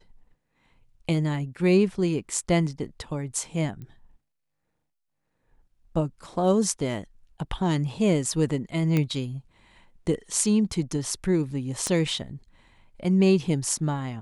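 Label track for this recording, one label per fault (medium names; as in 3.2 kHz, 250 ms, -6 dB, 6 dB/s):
3.820000	3.820000	pop -29 dBFS
8.970000	8.970000	pop -12 dBFS
11.870000	11.870000	pop -14 dBFS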